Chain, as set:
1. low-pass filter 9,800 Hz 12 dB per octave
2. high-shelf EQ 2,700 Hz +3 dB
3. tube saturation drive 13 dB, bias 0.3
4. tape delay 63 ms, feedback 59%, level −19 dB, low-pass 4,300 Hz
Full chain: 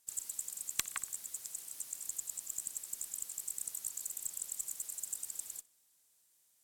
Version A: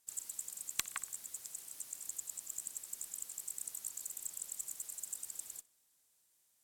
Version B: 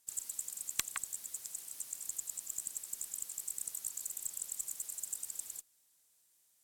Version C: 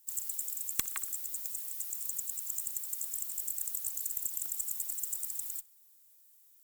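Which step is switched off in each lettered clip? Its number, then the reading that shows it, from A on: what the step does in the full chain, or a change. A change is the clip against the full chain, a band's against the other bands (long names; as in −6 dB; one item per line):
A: 2, 8 kHz band −2.0 dB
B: 4, echo-to-direct ratio −23.5 dB to none audible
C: 1, change in crest factor −3.5 dB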